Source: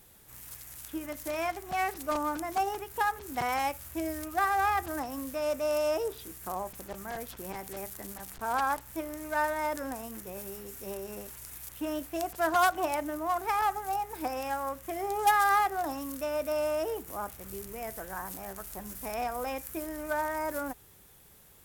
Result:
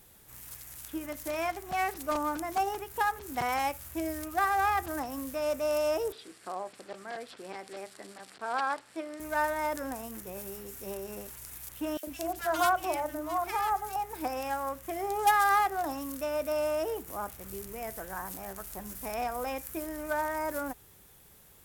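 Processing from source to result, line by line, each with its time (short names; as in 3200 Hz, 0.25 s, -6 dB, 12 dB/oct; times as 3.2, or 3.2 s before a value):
6.12–9.2 speaker cabinet 290–8000 Hz, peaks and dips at 930 Hz -5 dB, 4400 Hz +4 dB, 6400 Hz -10 dB
11.97–13.96 three bands offset in time highs, mids, lows 60/100 ms, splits 340/1600 Hz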